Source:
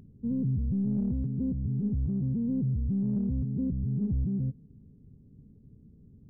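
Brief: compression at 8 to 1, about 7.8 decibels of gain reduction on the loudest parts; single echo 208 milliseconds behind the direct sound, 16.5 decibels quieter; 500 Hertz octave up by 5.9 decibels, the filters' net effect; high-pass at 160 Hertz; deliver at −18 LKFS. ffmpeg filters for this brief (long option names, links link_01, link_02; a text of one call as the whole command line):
ffmpeg -i in.wav -af "highpass=160,equalizer=frequency=500:width_type=o:gain=7.5,acompressor=threshold=-34dB:ratio=8,aecho=1:1:208:0.15,volume=20dB" out.wav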